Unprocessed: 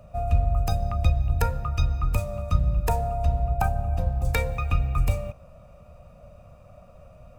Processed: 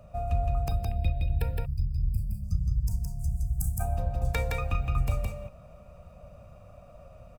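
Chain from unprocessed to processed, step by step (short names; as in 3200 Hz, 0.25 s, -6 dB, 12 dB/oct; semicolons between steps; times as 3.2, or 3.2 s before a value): tracing distortion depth 0.025 ms; 0.68–2.44 fixed phaser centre 2800 Hz, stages 4; 3.19–3.84 resonant high shelf 6000 Hz +13 dB, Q 1.5; echo 0.166 s -3.5 dB; in parallel at -1 dB: compressor, threshold -28 dBFS, peak gain reduction 14 dB; 1.65–3.8 on the sum: spectral gain 220–4500 Hz -29 dB; gain -8 dB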